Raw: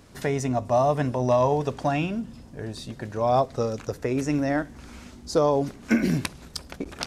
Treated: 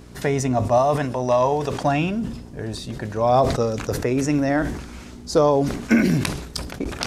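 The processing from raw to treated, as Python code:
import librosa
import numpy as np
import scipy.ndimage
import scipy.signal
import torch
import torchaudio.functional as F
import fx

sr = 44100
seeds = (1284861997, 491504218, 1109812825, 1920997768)

y = fx.low_shelf(x, sr, hz=340.0, db=-7.5, at=(0.78, 1.82))
y = fx.dmg_buzz(y, sr, base_hz=60.0, harmonics=7, level_db=-50.0, tilt_db=-3, odd_only=False)
y = fx.sustainer(y, sr, db_per_s=65.0)
y = y * librosa.db_to_amplitude(4.0)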